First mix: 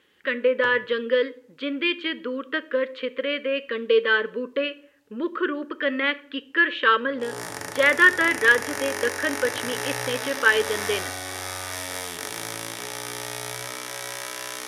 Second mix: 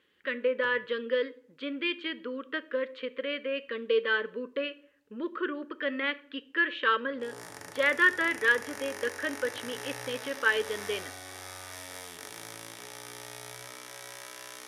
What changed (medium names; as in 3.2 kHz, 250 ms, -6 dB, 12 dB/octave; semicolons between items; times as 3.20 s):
speech -7.0 dB; background -11.0 dB